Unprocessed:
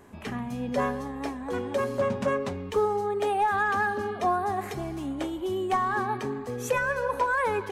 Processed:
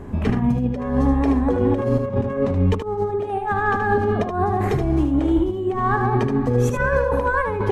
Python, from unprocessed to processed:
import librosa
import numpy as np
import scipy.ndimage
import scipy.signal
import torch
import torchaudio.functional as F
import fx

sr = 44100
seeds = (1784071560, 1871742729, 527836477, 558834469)

p1 = fx.tilt_eq(x, sr, slope=-3.5)
p2 = fx.over_compress(p1, sr, threshold_db=-27.0, ratio=-0.5)
p3 = p2 + fx.echo_single(p2, sr, ms=76, db=-6.5, dry=0)
y = p3 * librosa.db_to_amplitude(7.0)